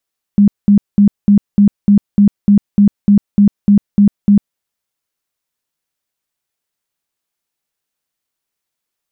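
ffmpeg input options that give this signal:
ffmpeg -f lavfi -i "aevalsrc='0.631*sin(2*PI*203*mod(t,0.3))*lt(mod(t,0.3),20/203)':duration=4.2:sample_rate=44100" out.wav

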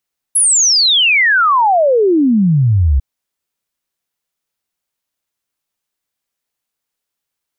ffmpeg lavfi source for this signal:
ffmpeg -f lavfi -i "aevalsrc='0.398*clip(min(t,2.65-t)/0.01,0,1)*sin(2*PI*11000*2.65/log(63/11000)*(exp(log(63/11000)*t/2.65)-1))':duration=2.65:sample_rate=44100" out.wav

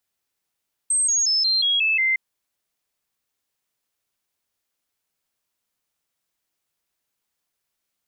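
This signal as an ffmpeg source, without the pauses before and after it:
ffmpeg -f lavfi -i "aevalsrc='0.141*clip(min(mod(t,0.18),0.18-mod(t,0.18))/0.005,0,1)*sin(2*PI*8320*pow(2,-floor(t/0.18)/3)*mod(t,0.18))':duration=1.26:sample_rate=44100" out.wav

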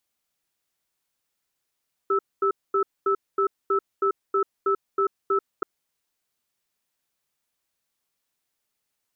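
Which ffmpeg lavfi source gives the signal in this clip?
ffmpeg -f lavfi -i "aevalsrc='0.0841*(sin(2*PI*394*t)+sin(2*PI*1310*t))*clip(min(mod(t,0.32),0.09-mod(t,0.32))/0.005,0,1)':duration=3.53:sample_rate=44100" out.wav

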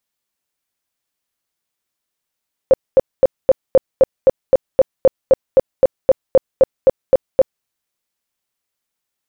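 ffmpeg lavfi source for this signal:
ffmpeg -f lavfi -i "aevalsrc='0.596*sin(2*PI*529*mod(t,0.26))*lt(mod(t,0.26),14/529)':duration=4.94:sample_rate=44100" out.wav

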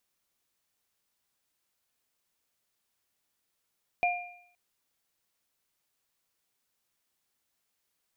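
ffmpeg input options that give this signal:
ffmpeg -f lavfi -i "aevalsrc='0.075*pow(10,-3*t/0.63)*sin(2*PI*709*t)+0.0531*pow(10,-3*t/0.71)*sin(2*PI*2400*t)':duration=0.52:sample_rate=44100" out.wav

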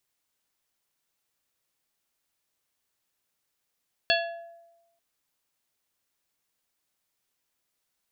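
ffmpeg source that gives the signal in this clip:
ffmpeg -f lavfi -i "aevalsrc='0.0708*pow(10,-3*t/1.06)*sin(2*PI*677*t)+0.0708*pow(10,-3*t/0.558)*sin(2*PI*1692.5*t)+0.0708*pow(10,-3*t/0.402)*sin(2*PI*2708*t)+0.0708*pow(10,-3*t/0.344)*sin(2*PI*3385*t)+0.0708*pow(10,-3*t/0.286)*sin(2*PI*4400.5*t)':duration=0.89:sample_rate=44100" out.wav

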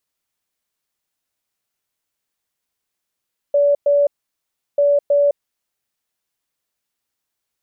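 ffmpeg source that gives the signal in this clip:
ffmpeg -f lavfi -i "aevalsrc='0.282*sin(2*PI*574*t)*clip(min(mod(mod(t,1.24),0.32),0.21-mod(mod(t,1.24),0.32))/0.005,0,1)*lt(mod(t,1.24),0.64)':duration=2.48:sample_rate=44100" out.wav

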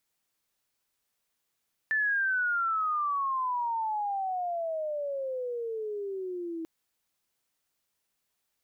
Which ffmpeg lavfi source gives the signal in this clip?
ffmpeg -f lavfi -i "aevalsrc='pow(10,(-24-9*t/4.74)/20)*sin(2*PI*1770*4.74/(-29.5*log(2)/12)*(exp(-29.5*log(2)/12*t/4.74)-1))':duration=4.74:sample_rate=44100" out.wav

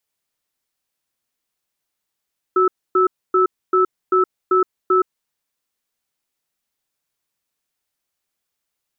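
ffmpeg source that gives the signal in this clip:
ffmpeg -f lavfi -i "aevalsrc='0.188*(sin(2*PI*371*t)+sin(2*PI*1310*t))*clip(min(mod(t,0.39),0.12-mod(t,0.39))/0.005,0,1)':duration=2.51:sample_rate=44100" out.wav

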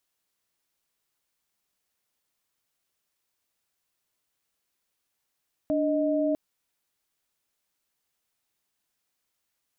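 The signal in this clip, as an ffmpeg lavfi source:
ffmpeg -f lavfi -i "aevalsrc='0.0562*(sin(2*PI*293.66*t)+sin(2*PI*622.25*t))':duration=0.65:sample_rate=44100" out.wav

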